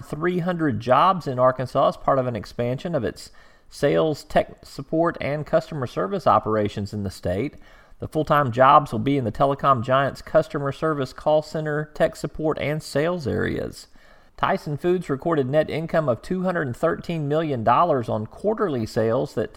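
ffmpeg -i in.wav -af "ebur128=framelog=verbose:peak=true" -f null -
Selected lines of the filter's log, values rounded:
Integrated loudness:
  I:         -22.5 LUFS
  Threshold: -32.8 LUFS
Loudness range:
  LRA:         4.7 LU
  Threshold: -43.0 LUFS
  LRA low:   -25.0 LUFS
  LRA high:  -20.3 LUFS
True peak:
  Peak:       -2.4 dBFS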